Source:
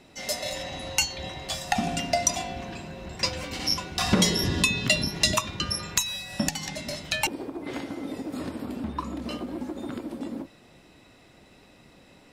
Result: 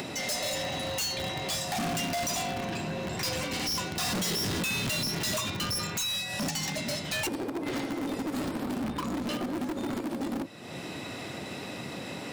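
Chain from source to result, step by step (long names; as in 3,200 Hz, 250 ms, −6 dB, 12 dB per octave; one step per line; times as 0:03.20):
dynamic equaliser 7,500 Hz, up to +5 dB, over −37 dBFS, Q 0.72
in parallel at −9 dB: bit reduction 5 bits
on the sum: high-pass filter 94 Hz 24 dB per octave
upward compression, threshold −29 dBFS
gain into a clipping stage and back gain 32.5 dB
level +3.5 dB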